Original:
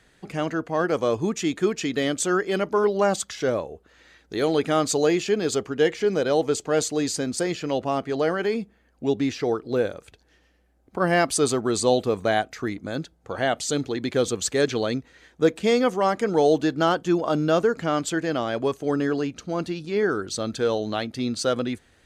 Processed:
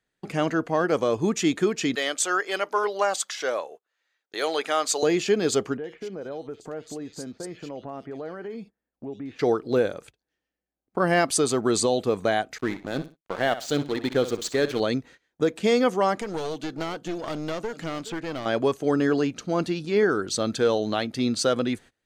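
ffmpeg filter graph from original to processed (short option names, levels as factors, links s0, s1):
-filter_complex "[0:a]asettb=1/sr,asplit=3[s0][s1][s2];[s0]atrim=end=1.954[s3];[s1]atrim=start=1.95:end=5.03,asetpts=PTS-STARTPTS,afade=t=in:d=0.004:c=qsin,afade=t=out:st=3.076:d=0.004:c=qsin,highpass=670,deesser=0.35[s4];[s2]atrim=start=5.026[s5];[s3][s4]acrossfade=d=0.004:c1=hsin:c2=qsin[s6];[s6][s5]acrossfade=d=0.004:c1=qsin:c2=hsin,asettb=1/sr,asplit=3[s7][s8][s9];[s7]atrim=end=5.774[s10];[s8]atrim=start=5.77:end=9.39,asetpts=PTS-STARTPTS,afade=t=in:d=0.004:c=qsin,afade=t=out:st=3.616:d=0.004:c=qsin,equalizer=f=7100:w=0.38:g=-9,acompressor=threshold=0.0112:ratio=3:attack=3.2:release=140:knee=1:detection=peak,acrossover=split=2500[s11][s12];[s12]adelay=60[s13];[s11][s13]amix=inputs=2:normalize=0,atrim=end_sample=159642[s14];[s9]atrim=start=9.386[s15];[s10][s14]acrossfade=d=0.004:c1=hsin:c2=qsin[s16];[s16][s15]acrossfade=d=0.004:c1=qsin:c2=hsin,asettb=1/sr,asplit=3[s17][s18][s19];[s17]atrim=end=12.584[s20];[s18]atrim=start=12.58:end=14.8,asetpts=PTS-STARTPTS,afade=t=in:d=0.004:c=qsin,afade=t=out:st=2.216:d=0.004:c=qsin,lowpass=5600,aeval=exprs='sgn(val(0))*max(abs(val(0))-0.0141,0)':c=same,aecho=1:1:62|124|186:0.211|0.0528|0.0132,atrim=end_sample=97902[s21];[s19]atrim=start=14.796[s22];[s20][s21]acrossfade=d=0.004:c1=hsin:c2=qsin[s23];[s23][s22]acrossfade=d=0.004:c1=qsin:c2=hsin,asettb=1/sr,asplit=3[s24][s25][s26];[s24]atrim=end=16.214[s27];[s25]atrim=start=16.21:end=18.46,asetpts=PTS-STARTPTS,afade=t=in:d=0.004:c=qsin,afade=t=out:st=2.246:d=0.004:c=qsin,aecho=1:1:419:0.0891,atrim=end_sample=99225,acrossover=split=2100|4700[s28][s29][s30];[s28]acompressor=threshold=0.0316:ratio=4[s31];[s29]acompressor=threshold=0.00631:ratio=4[s32];[s30]acompressor=threshold=0.00251:ratio=4[s33];[s31][s32][s33]amix=inputs=3:normalize=0,aeval=exprs='clip(val(0),-1,0.0188)':c=same[s34];[s26]atrim=start=18.456[s35];[s27][s34]acrossfade=d=0.004:c1=hsin:c2=qsin[s36];[s36][s35]acrossfade=d=0.004:c1=qsin:c2=hsin,agate=range=0.0631:threshold=0.00562:ratio=16:detection=peak,equalizer=f=68:w=2.6:g=-14.5,alimiter=limit=0.2:level=0:latency=1:release=264,volume=1.33"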